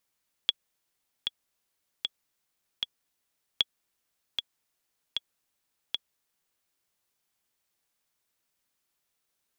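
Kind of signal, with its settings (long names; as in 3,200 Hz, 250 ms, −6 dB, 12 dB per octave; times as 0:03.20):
click track 77 BPM, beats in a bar 4, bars 2, 3,360 Hz, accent 6.5 dB −9 dBFS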